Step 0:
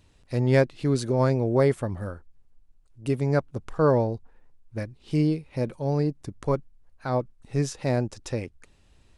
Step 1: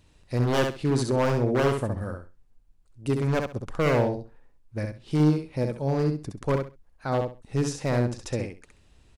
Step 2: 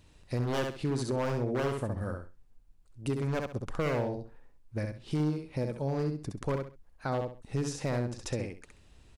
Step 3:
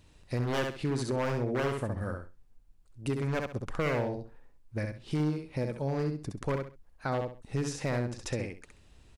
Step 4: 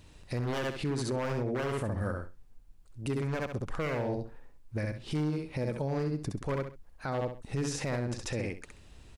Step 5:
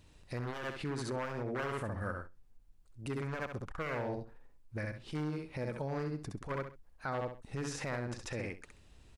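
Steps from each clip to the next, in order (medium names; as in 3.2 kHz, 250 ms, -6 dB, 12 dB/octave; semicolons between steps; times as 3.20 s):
wavefolder -17 dBFS; on a send: feedback delay 66 ms, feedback 20%, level -5 dB
compression 2.5:1, threshold -31 dBFS, peak gain reduction 10 dB
dynamic bell 2 kHz, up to +4 dB, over -53 dBFS, Q 1.3
peak limiter -29 dBFS, peak gain reduction 9.5 dB; trim +4.5 dB
dynamic bell 1.4 kHz, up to +7 dB, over -50 dBFS, Q 0.83; transformer saturation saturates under 140 Hz; trim -6 dB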